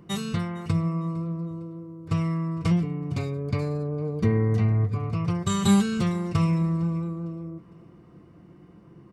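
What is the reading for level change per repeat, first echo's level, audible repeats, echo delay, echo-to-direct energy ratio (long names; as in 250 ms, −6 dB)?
−8.5 dB, −22.0 dB, 2, 456 ms, −21.5 dB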